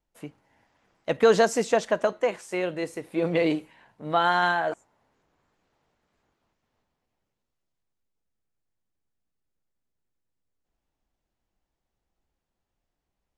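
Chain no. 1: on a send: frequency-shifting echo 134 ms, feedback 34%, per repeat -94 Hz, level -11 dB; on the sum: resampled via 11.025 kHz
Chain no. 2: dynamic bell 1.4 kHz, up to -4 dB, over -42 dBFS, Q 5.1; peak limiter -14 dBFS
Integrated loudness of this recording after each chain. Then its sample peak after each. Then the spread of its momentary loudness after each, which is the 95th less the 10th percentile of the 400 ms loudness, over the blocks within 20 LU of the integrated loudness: -24.5 LUFS, -26.5 LUFS; -8.0 dBFS, -14.0 dBFS; 12 LU, 17 LU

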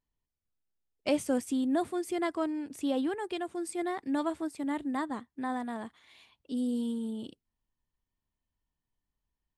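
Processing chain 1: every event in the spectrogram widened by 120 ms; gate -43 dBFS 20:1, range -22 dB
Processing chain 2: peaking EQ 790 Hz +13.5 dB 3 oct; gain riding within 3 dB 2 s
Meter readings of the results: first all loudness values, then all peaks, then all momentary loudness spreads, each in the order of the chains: -29.5 LUFS, -24.5 LUFS; -12.0 dBFS, -7.5 dBFS; 10 LU, 7 LU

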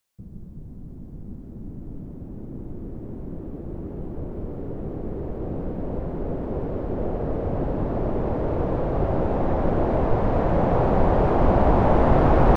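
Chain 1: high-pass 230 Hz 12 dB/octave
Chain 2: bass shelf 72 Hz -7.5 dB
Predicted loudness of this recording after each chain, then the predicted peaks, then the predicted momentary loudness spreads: -26.0 LUFS, -25.0 LUFS; -7.5 dBFS, -6.5 dBFS; 21 LU, 21 LU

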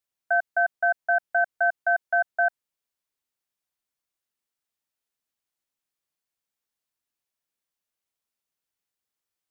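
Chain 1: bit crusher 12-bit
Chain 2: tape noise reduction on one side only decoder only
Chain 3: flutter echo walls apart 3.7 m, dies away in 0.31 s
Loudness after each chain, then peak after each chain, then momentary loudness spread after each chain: -24.5 LUFS, -24.5 LUFS, -20.5 LUFS; -14.0 dBFS, -14.0 dBFS, -10.0 dBFS; 3 LU, 3 LU, 3 LU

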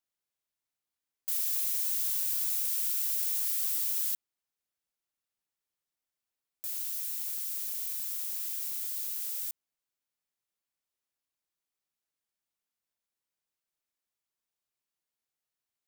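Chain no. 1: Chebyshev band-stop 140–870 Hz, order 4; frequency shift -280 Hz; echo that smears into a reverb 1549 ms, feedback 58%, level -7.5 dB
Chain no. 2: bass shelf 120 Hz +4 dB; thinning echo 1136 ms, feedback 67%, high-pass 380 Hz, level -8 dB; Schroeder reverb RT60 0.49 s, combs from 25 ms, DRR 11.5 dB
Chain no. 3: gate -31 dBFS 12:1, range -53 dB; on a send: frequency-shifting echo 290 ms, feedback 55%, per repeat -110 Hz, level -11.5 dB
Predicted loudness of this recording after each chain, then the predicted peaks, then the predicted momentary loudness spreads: -31.5 LUFS, -30.0 LUFS, -27.5 LUFS; -18.5 dBFS, -15.5 dBFS, -16.5 dBFS; 20 LU, 18 LU, 14 LU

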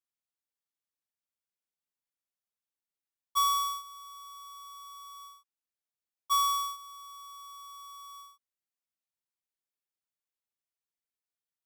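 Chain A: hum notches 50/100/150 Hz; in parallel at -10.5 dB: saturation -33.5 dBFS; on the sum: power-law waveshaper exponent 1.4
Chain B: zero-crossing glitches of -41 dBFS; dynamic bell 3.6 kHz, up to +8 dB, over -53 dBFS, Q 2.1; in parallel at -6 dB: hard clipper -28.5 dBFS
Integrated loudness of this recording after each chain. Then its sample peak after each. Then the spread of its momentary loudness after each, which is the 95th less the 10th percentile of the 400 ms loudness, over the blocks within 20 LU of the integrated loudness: -29.5 LUFS, -32.5 LUFS; -23.0 dBFS, -17.0 dBFS; 15 LU, 17 LU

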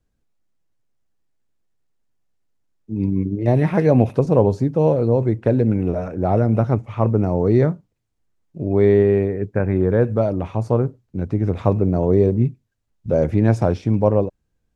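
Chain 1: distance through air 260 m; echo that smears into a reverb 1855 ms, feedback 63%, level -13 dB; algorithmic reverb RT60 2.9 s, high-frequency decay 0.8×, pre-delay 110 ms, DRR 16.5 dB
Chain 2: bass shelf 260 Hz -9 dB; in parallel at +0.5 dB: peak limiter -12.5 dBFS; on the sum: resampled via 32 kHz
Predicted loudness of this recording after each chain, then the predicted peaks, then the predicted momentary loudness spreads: -19.0 LUFS, -17.5 LUFS; -2.0 dBFS, -1.5 dBFS; 10 LU, 7 LU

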